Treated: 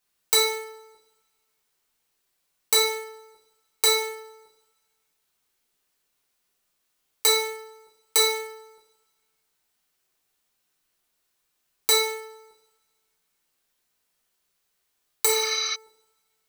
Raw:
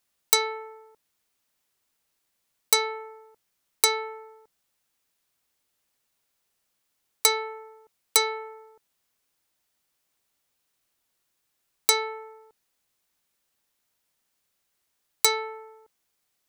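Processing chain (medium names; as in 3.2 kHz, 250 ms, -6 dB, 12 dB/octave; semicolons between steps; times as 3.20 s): two-slope reverb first 0.57 s, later 1.8 s, from -28 dB, DRR -4 dB; spectral replace 15.28–15.72 s, 1.1–6.2 kHz before; trim -4 dB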